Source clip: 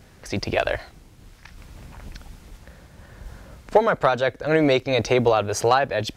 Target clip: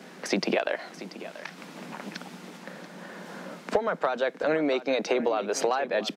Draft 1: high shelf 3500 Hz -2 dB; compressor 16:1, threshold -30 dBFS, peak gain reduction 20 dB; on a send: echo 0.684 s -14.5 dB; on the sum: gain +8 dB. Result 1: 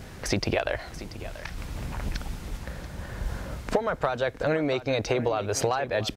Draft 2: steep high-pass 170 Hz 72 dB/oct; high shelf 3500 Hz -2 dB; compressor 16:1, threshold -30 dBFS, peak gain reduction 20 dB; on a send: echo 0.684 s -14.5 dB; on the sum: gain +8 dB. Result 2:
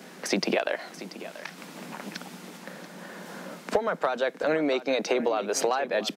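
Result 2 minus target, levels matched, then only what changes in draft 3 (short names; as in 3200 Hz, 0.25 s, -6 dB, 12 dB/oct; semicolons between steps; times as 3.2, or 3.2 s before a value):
8000 Hz band +3.5 dB
add after compressor: high shelf 8500 Hz -10 dB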